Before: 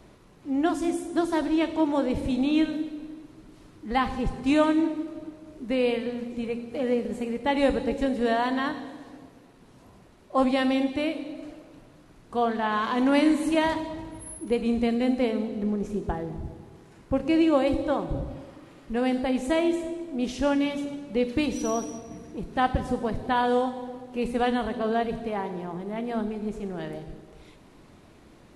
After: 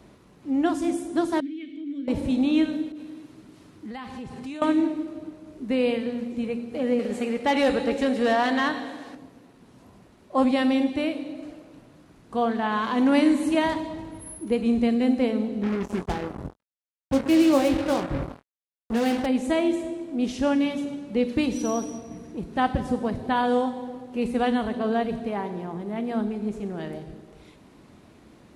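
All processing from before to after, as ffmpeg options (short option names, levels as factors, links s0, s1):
-filter_complex "[0:a]asettb=1/sr,asplit=3[s0][s1][s2];[s0]atrim=end=1.404[s3];[s1]atrim=start=1.4:end=2.08,asetpts=PTS-STARTPTS,afade=t=in:d=0.004:c=qsin,afade=t=out:st=0.676:d=0.004:c=qsin,highshelf=f=4900:g=8.5,acompressor=threshold=0.0447:ratio=2:attack=3.2:release=140:knee=1:detection=peak,asplit=3[s4][s5][s6];[s4]bandpass=f=270:t=q:w=8,volume=1[s7];[s5]bandpass=f=2290:t=q:w=8,volume=0.501[s8];[s6]bandpass=f=3010:t=q:w=8,volume=0.355[s9];[s7][s8][s9]amix=inputs=3:normalize=0[s10];[s2]atrim=start=2.076[s11];[s3][s10]acrossfade=d=0.004:c1=hsin:c2=qsin[s12];[s12][s11]acrossfade=d=0.004:c1=qsin:c2=hsin,asettb=1/sr,asplit=3[s13][s14][s15];[s13]atrim=end=2.924[s16];[s14]atrim=start=2.92:end=4.62,asetpts=PTS-STARTPTS,afade=t=in:d=0.004:c=qsin,afade=t=out:st=1.696:d=0.004:c=qsin,highpass=66,acompressor=threshold=0.0158:ratio=6:attack=3.2:release=140:knee=1:detection=peak,adynamicequalizer=threshold=0.00224:dfrequency=1500:dqfactor=0.7:tfrequency=1500:tqfactor=0.7:attack=5:release=100:ratio=0.375:range=2:mode=boostabove:tftype=highshelf[s17];[s15]atrim=start=4.616[s18];[s16][s17]acrossfade=d=0.004:c1=hsin:c2=qsin[s19];[s19][s18]acrossfade=d=0.004:c1=qsin:c2=hsin,asettb=1/sr,asplit=3[s20][s21][s22];[s20]atrim=end=6.994[s23];[s21]atrim=start=6.99:end=9.15,asetpts=PTS-STARTPTS,afade=t=in:d=0.004:c=qsin,afade=t=out:st=2.156:d=0.004:c=qsin,asoftclip=type=hard:threshold=0.178,bandreject=f=1000:w=15,asplit=2[s24][s25];[s25]highpass=f=720:p=1,volume=4.47,asoftclip=type=tanh:threshold=0.2[s26];[s24][s26]amix=inputs=2:normalize=0,lowpass=f=6900:p=1,volume=0.501[s27];[s22]atrim=start=9.146[s28];[s23][s27]acrossfade=d=0.004:c1=hsin:c2=qsin[s29];[s29][s28]acrossfade=d=0.004:c1=qsin:c2=hsin,asettb=1/sr,asplit=3[s30][s31][s32];[s30]atrim=end=15.634[s33];[s31]atrim=start=15.63:end=19.26,asetpts=PTS-STARTPTS,afade=t=in:d=0.004:c=qsin,afade=t=out:st=3.626:d=0.004:c=qsin,acrusher=bits=4:mix=0:aa=0.5,asplit=2[s34][s35];[s35]adelay=22,volume=0.376[s36];[s34][s36]amix=inputs=2:normalize=0,atrim=end_sample=160083[s37];[s32]atrim=start=19.256[s38];[s33][s37]acrossfade=d=0.004:c1=hsin:c2=qsin[s39];[s39][s38]acrossfade=d=0.004:c1=qsin:c2=hsin,highpass=44,equalizer=f=230:t=o:w=0.75:g=3.5"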